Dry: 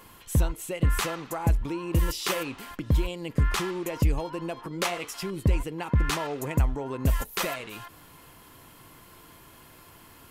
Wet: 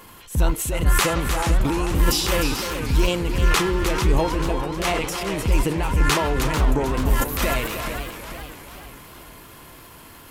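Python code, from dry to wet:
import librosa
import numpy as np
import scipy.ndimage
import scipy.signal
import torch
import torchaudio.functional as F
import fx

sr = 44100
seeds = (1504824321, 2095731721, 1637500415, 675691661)

y = fx.transient(x, sr, attack_db=-10, sustain_db=7)
y = y + 10.0 ** (-8.5 / 20.0) * np.pad(y, (int(304 * sr / 1000.0), 0))[:len(y)]
y = fx.echo_warbled(y, sr, ms=436, feedback_pct=49, rate_hz=2.8, cents=201, wet_db=-9.0)
y = F.gain(torch.from_numpy(y), 6.0).numpy()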